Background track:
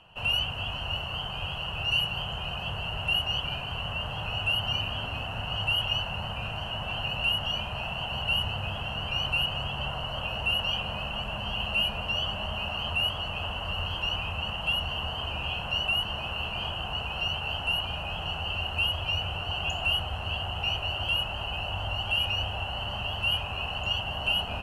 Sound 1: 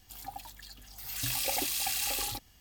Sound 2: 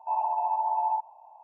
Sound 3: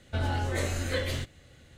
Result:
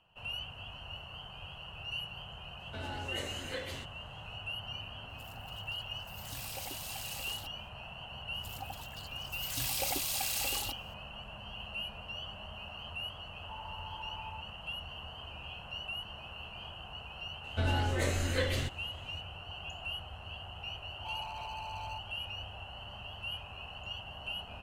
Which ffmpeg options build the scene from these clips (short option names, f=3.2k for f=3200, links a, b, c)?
-filter_complex "[3:a]asplit=2[a][b];[1:a]asplit=2[c][d];[2:a]asplit=2[e][f];[0:a]volume=-13dB[g];[a]highpass=f=190:p=1[h];[d]bandreject=f=1.8k:w=12[i];[e]highpass=f=1.4k:w=0.5412,highpass=f=1.4k:w=1.3066[j];[f]asoftclip=type=hard:threshold=-33dB[k];[h]atrim=end=1.77,asetpts=PTS-STARTPTS,volume=-8.5dB,afade=t=in:d=0.004:c=hsin,afade=t=out:st=1.766:d=0.004:c=hsin,adelay=2600[l];[c]atrim=end=2.6,asetpts=PTS-STARTPTS,volume=-11.5dB,afade=t=in:d=0.004:c=hsin,afade=t=out:st=2.596:d=0.004:c=hsin,adelay=224469S[m];[i]atrim=end=2.6,asetpts=PTS-STARTPTS,volume=-2.5dB,afade=t=in:d=0.004:c=hsin,afade=t=out:st=2.596:d=0.004:c=hsin,adelay=367794S[n];[j]atrim=end=1.43,asetpts=PTS-STARTPTS,volume=-3.5dB,afade=t=in:d=0.004:c=hsin,afade=t=out:st=1.426:d=0.004:c=hsin,adelay=13410[o];[b]atrim=end=1.77,asetpts=PTS-STARTPTS,volume=-1.5dB,afade=t=in:d=0.004:c=hsin,afade=t=out:st=1.766:d=0.004:c=hsin,adelay=17440[p];[k]atrim=end=1.43,asetpts=PTS-STARTPTS,volume=-9dB,afade=t=in:d=0.004:c=hsin,afade=t=out:st=1.426:d=0.004:c=hsin,adelay=20980[q];[g][l][m][n][o][p][q]amix=inputs=7:normalize=0"